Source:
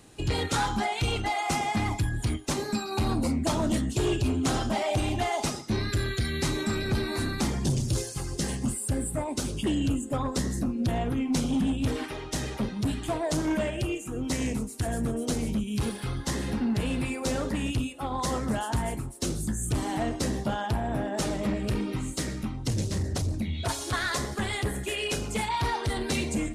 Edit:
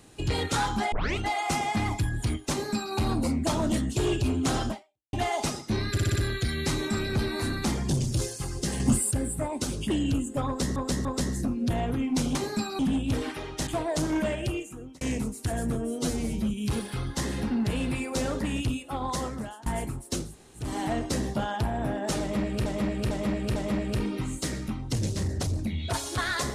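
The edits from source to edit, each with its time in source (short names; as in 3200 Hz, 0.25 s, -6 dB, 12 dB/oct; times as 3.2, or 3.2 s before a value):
0.92 tape start 0.26 s
2.51–2.95 copy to 11.53
4.7–5.13 fade out exponential
5.92 stutter 0.06 s, 5 plays
8.56–8.87 gain +6.5 dB
10.23–10.52 loop, 3 plays
12.41–13.02 cut
13.83–14.36 fade out
15.1–15.6 stretch 1.5×
18.15–18.76 fade out, to -21 dB
19.35–19.75 room tone, crossfade 0.24 s
21.31–21.76 loop, 4 plays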